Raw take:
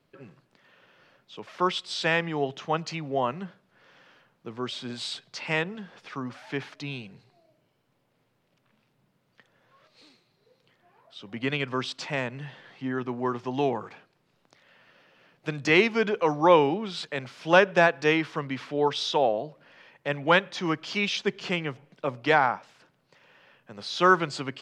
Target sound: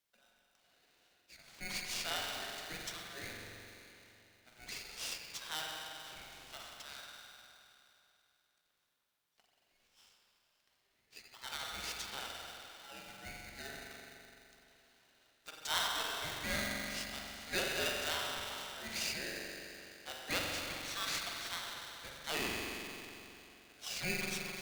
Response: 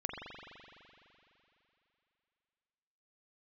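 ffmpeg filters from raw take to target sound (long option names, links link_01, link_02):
-filter_complex "[0:a]aderivative[link_01];[1:a]atrim=start_sample=2205[link_02];[link_01][link_02]afir=irnorm=-1:irlink=0,aeval=exprs='val(0)*sgn(sin(2*PI*1100*n/s))':channel_layout=same,volume=-1.5dB"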